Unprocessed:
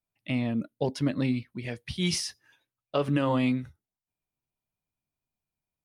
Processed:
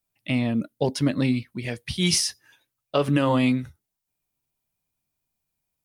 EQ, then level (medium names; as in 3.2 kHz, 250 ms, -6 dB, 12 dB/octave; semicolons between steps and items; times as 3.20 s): treble shelf 5.8 kHz +8 dB; +4.5 dB